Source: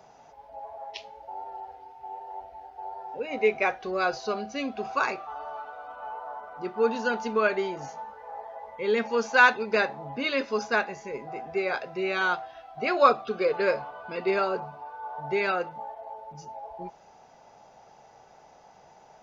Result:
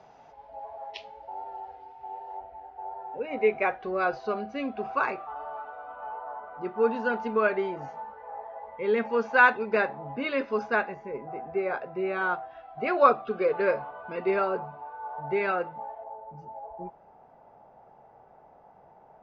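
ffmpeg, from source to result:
-af "asetnsamples=n=441:p=0,asendcmd='2.37 lowpass f 2200;10.94 lowpass f 1500;12.51 lowpass f 2200;16.04 lowpass f 1200',lowpass=4k"

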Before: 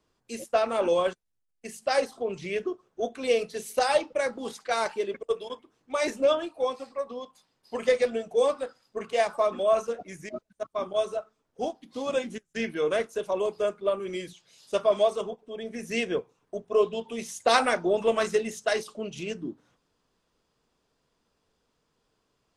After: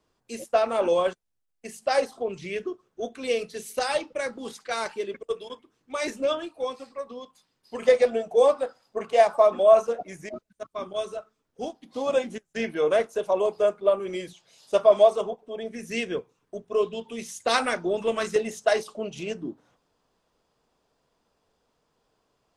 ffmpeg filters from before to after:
-af "asetnsamples=n=441:p=0,asendcmd='2.28 equalizer g -4;7.82 equalizer g 7.5;10.34 equalizer g -4;11.82 equalizer g 6.5;15.68 equalizer g -3.5;18.36 equalizer g 6',equalizer=f=710:t=o:w=1.2:g=2.5"

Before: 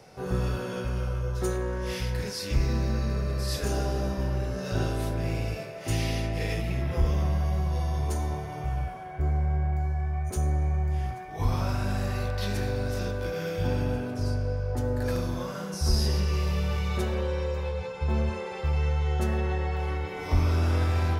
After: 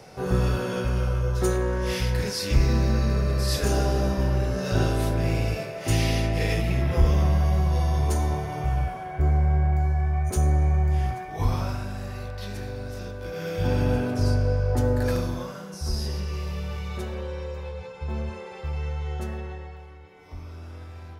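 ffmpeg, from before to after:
-af "volume=16dB,afade=t=out:st=11.18:d=0.72:silence=0.316228,afade=t=in:st=13.2:d=0.78:silence=0.281838,afade=t=out:st=14.84:d=0.78:silence=0.316228,afade=t=out:st=19.14:d=0.75:silence=0.251189"

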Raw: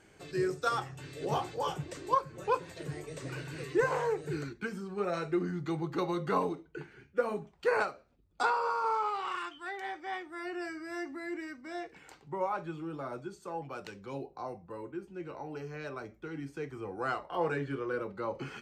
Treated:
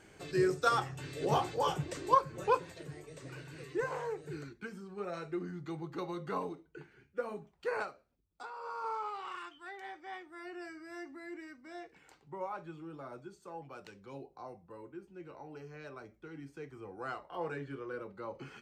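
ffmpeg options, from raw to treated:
-af "volume=14dB,afade=t=out:st=2.43:d=0.45:silence=0.354813,afade=t=out:st=7.9:d=0.59:silence=0.251189,afade=t=in:st=8.49:d=0.36:silence=0.251189"

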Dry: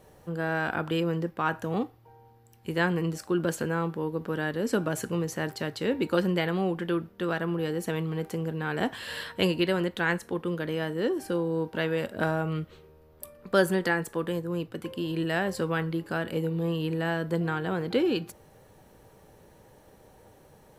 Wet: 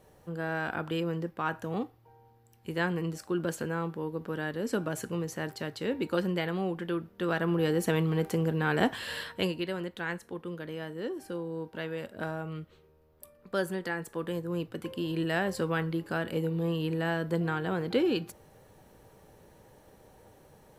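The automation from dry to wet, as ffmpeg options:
-af "volume=9.5dB,afade=t=in:st=7.03:d=0.68:silence=0.446684,afade=t=out:st=8.74:d=0.85:silence=0.281838,afade=t=in:st=13.89:d=0.7:silence=0.473151"

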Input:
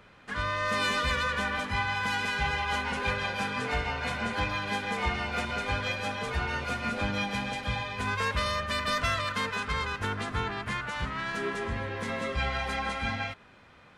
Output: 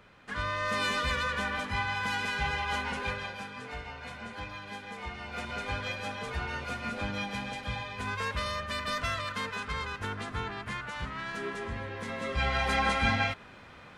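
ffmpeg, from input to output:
-af "volume=13.5dB,afade=t=out:st=2.86:d=0.61:silence=0.375837,afade=t=in:st=5.16:d=0.42:silence=0.473151,afade=t=in:st=12.17:d=0.66:silence=0.354813"

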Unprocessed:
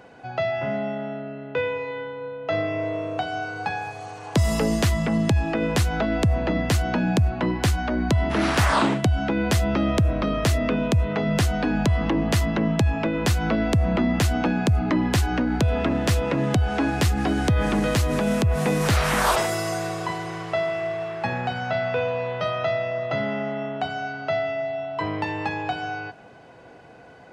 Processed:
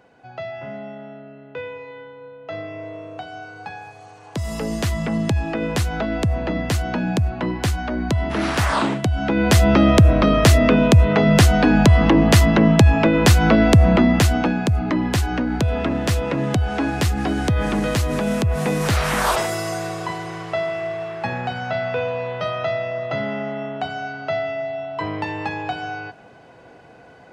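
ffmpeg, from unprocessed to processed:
-af "volume=8.5dB,afade=t=in:st=4.4:d=0.66:silence=0.473151,afade=t=in:st=9.12:d=0.58:silence=0.375837,afade=t=out:st=13.79:d=0.82:silence=0.421697"

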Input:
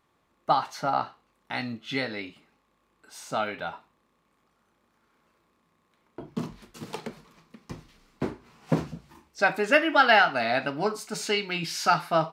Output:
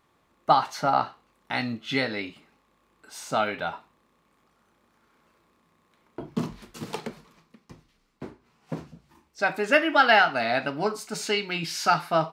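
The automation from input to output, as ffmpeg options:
-af "volume=13dB,afade=t=out:st=6.86:d=0.88:silence=0.237137,afade=t=in:st=8.92:d=0.86:silence=0.334965"

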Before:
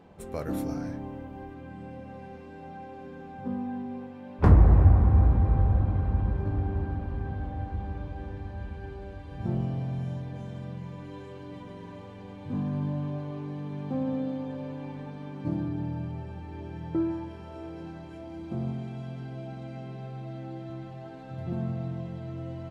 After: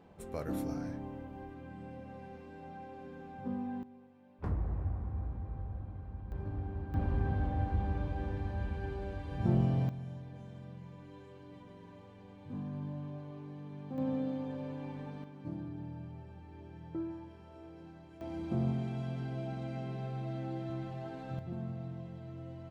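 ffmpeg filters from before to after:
-af "asetnsamples=n=441:p=0,asendcmd='3.83 volume volume -18dB;6.32 volume volume -10dB;6.94 volume volume 1dB;9.89 volume volume -10dB;13.98 volume volume -4dB;15.24 volume volume -11dB;18.21 volume volume 0dB;21.39 volume volume -8.5dB',volume=-5dB"

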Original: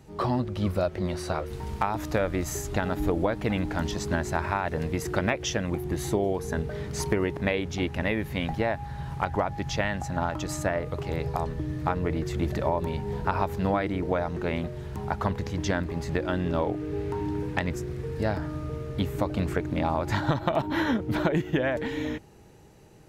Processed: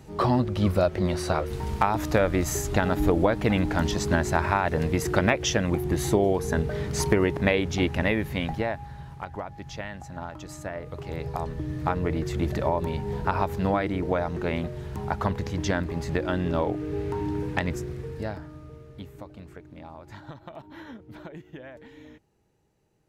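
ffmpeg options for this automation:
-af "volume=13.5dB,afade=t=out:st=7.89:d=1.27:silence=0.237137,afade=t=in:st=10.62:d=1.32:silence=0.334965,afade=t=out:st=17.73:d=0.73:silence=0.298538,afade=t=out:st=18.46:d=0.96:silence=0.421697"

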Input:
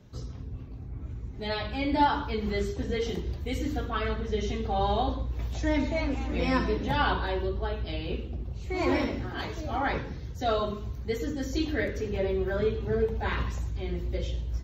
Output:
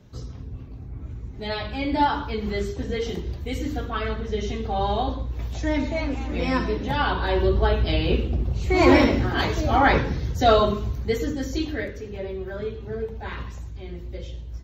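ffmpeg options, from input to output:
-af "volume=11dB,afade=t=in:st=7.14:d=0.41:silence=0.375837,afade=t=out:st=10.39:d=0.96:silence=0.473151,afade=t=out:st=11.35:d=0.65:silence=0.398107"

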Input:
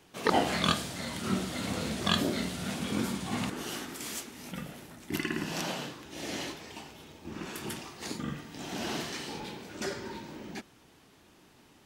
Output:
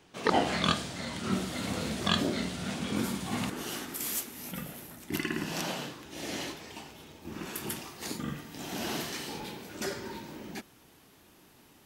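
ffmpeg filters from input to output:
-af "asetnsamples=n=441:p=0,asendcmd='1.32 equalizer g 0;2.07 equalizer g -7.5;2.96 equalizer g 4.5;3.94 equalizer g 14;5.04 equalizer g 3.5;7.22 equalizer g 10.5',equalizer=f=13k:t=o:w=0.63:g=-10.5"

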